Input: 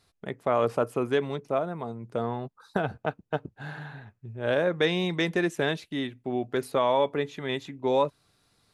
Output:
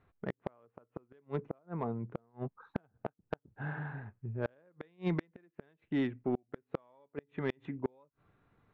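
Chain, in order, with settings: local Wiener filter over 9 samples; low-pass 2.1 kHz 12 dB/octave; peaking EQ 660 Hz -3 dB 0.69 oct; inverted gate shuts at -20 dBFS, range -39 dB; saturation -22 dBFS, distortion -18 dB; trim +1 dB

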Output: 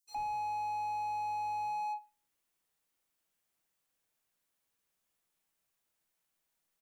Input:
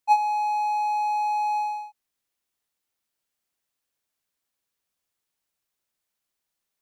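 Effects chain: bands offset in time highs, lows 70 ms, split 4.5 kHz; simulated room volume 310 m³, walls furnished, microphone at 0.64 m; slew-rate limiter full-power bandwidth 15 Hz

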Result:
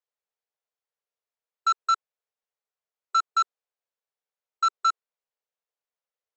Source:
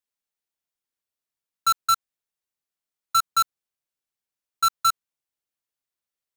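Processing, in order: brick-wall FIR band-pass 400–7900 Hz; tilt EQ -3.5 dB/octave

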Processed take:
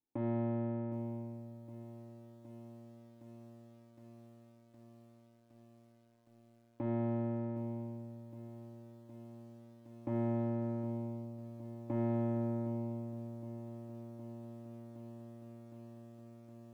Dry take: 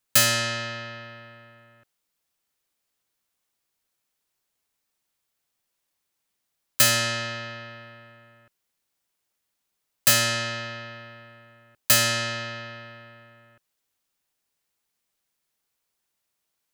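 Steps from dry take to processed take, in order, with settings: waveshaping leveller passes 2; in parallel at +3 dB: compression 10:1, threshold -30 dBFS, peak gain reduction 19 dB; on the sum: Chebyshev shaper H 7 -34 dB, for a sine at -0.5 dBFS; saturation -13 dBFS, distortion -12 dB; cascade formant filter u; on a send: filtered feedback delay 197 ms, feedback 72%, low-pass 2.6 kHz, level -22 dB; on the sum: bit-crushed delay 764 ms, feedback 80%, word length 11-bit, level -15 dB; trim +3.5 dB

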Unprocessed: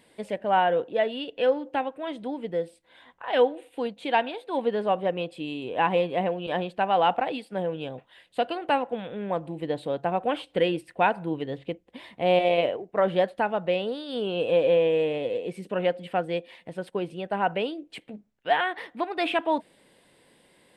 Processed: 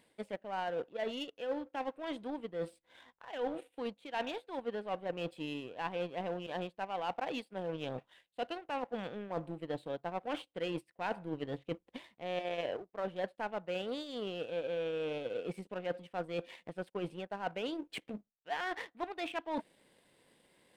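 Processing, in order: reverse; compression 6:1, threshold -37 dBFS, peak gain reduction 19.5 dB; reverse; power-law waveshaper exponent 1.4; trim +4.5 dB

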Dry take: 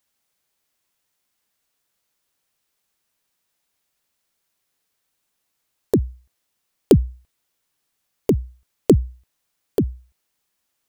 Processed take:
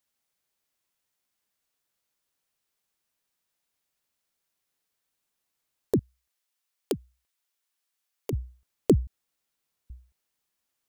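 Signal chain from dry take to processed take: 5.99–8.33 s: high-pass 1 kHz 6 dB/octave; 9.07–9.90 s: room tone; trim -6.5 dB

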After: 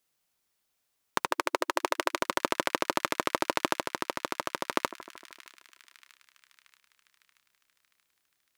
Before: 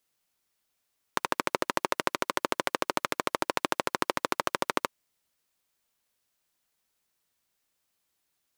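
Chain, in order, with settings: 1.31–2.19 s: brick-wall FIR high-pass 310 Hz; two-band feedback delay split 1.7 kHz, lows 153 ms, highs 630 ms, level -16 dB; 3.73–4.71 s: compression 1.5:1, threshold -35 dBFS, peak gain reduction 5.5 dB

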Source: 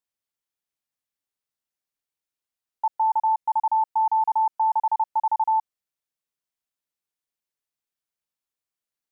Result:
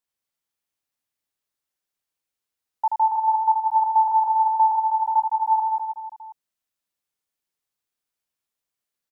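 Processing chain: reverse bouncing-ball echo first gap 80 ms, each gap 1.3×, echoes 5; trim +1.5 dB

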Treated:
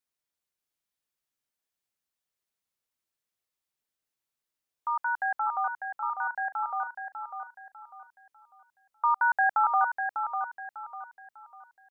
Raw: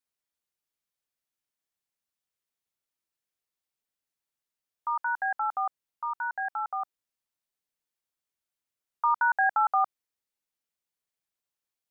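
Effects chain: feedback delay 598 ms, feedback 33%, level -7 dB

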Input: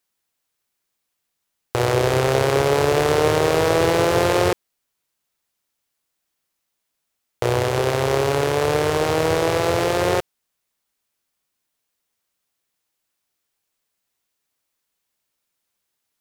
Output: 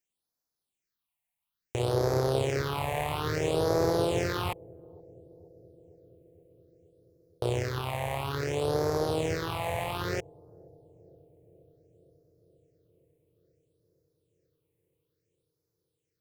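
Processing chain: phase shifter stages 6, 0.59 Hz, lowest notch 360–2800 Hz; on a send: bucket-brigade echo 473 ms, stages 2048, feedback 74%, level -23.5 dB; on the sum: trim -8 dB

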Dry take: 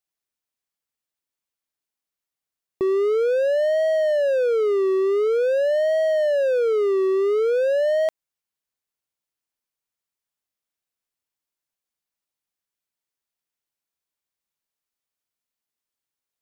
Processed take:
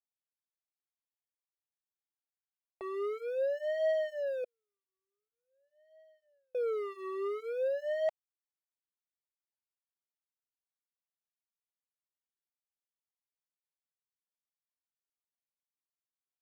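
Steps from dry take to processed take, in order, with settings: ladder band-pass 1 kHz, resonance 25%; waveshaping leveller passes 2; 4.44–6.55 s: gate -27 dBFS, range -58 dB; Shepard-style flanger falling 1.9 Hz; trim +3.5 dB

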